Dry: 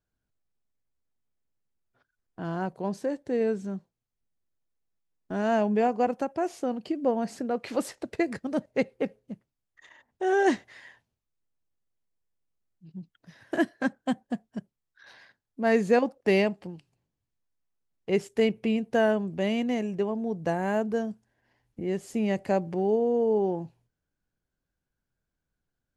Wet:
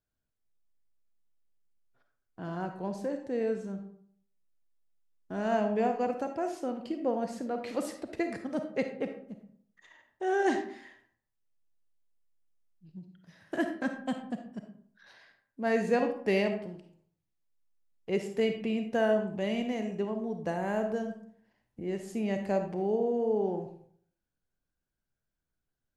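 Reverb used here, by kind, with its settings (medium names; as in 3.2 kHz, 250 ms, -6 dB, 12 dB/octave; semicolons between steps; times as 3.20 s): algorithmic reverb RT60 0.6 s, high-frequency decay 0.55×, pre-delay 10 ms, DRR 5.5 dB; trim -5 dB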